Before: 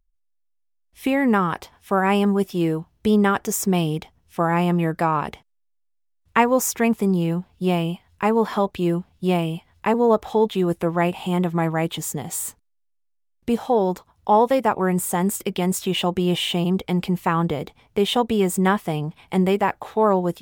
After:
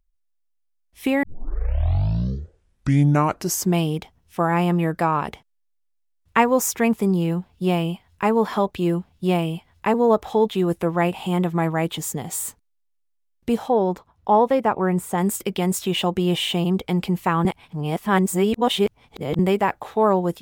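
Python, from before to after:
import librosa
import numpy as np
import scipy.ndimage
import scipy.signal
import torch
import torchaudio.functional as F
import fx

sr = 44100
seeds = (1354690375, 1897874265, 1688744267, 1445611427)

y = fx.high_shelf(x, sr, hz=3900.0, db=-10.5, at=(13.68, 15.18))
y = fx.edit(y, sr, fx.tape_start(start_s=1.23, length_s=2.62),
    fx.reverse_span(start_s=17.45, length_s=1.94), tone=tone)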